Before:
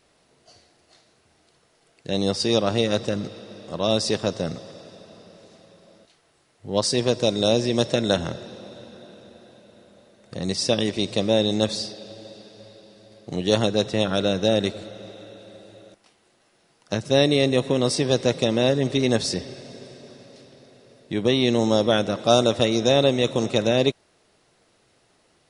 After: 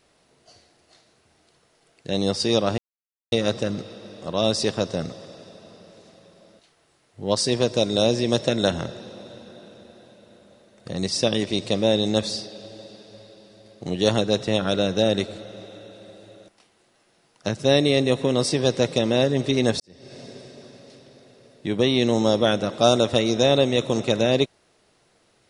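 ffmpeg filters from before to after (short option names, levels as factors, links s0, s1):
-filter_complex "[0:a]asplit=3[s0][s1][s2];[s0]atrim=end=2.78,asetpts=PTS-STARTPTS,afade=t=out:st=2.776:d=0.004:c=hsin,apad=pad_dur=0.54[s3];[s1]atrim=start=2.78:end=19.26,asetpts=PTS-STARTPTS,afade=t=in:d=0.004:c=hsin,afade=t=out:st=16.476:d=0.004:c=hsin[s4];[s2]atrim=start=19.26,asetpts=PTS-STARTPTS,afade=t=in:d=0.37:c=qua[s5];[s3][s4][s5]concat=n=3:v=0:a=1"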